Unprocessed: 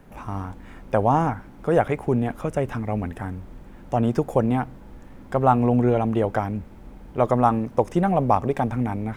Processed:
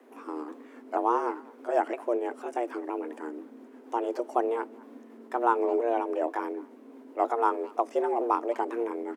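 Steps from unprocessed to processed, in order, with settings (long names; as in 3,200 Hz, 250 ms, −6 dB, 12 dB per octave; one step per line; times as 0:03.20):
pitch shifter swept by a sawtooth −4.5 semitones, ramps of 483 ms
far-end echo of a speakerphone 210 ms, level −21 dB
frequency shifter +230 Hz
level −6 dB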